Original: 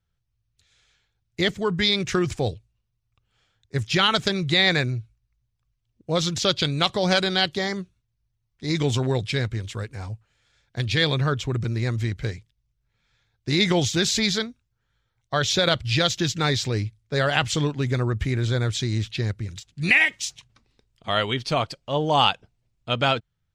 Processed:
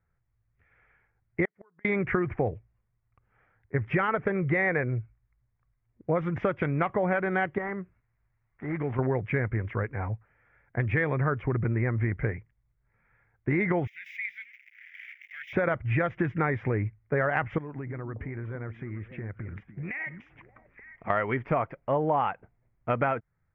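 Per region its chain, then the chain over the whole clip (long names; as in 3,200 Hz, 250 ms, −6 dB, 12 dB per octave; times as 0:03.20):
0:01.45–0:01.85: high-pass filter 690 Hz 6 dB per octave + downward compressor 2 to 1, threshold −29 dBFS + gate with flip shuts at −28 dBFS, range −37 dB
0:03.84–0:04.99: parametric band 480 Hz +7.5 dB 0.36 octaves + upward compression, threshold −36 dBFS
0:07.58–0:08.99: gap after every zero crossing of 0.11 ms + downward compressor 1.5 to 1, threshold −47 dBFS + one half of a high-frequency compander encoder only
0:13.87–0:15.53: spike at every zero crossing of −15 dBFS + elliptic high-pass filter 2,100 Hz, stop band 50 dB + output level in coarse steps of 10 dB
0:17.58–0:21.10: downward compressor 8 to 1, threshold −35 dBFS + echo through a band-pass that steps 290 ms, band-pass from 210 Hz, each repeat 1.4 octaves, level −7 dB
whole clip: elliptic low-pass filter 2,100 Hz, stop band 50 dB; low-shelf EQ 220 Hz −5 dB; downward compressor, threshold −29 dBFS; level +6 dB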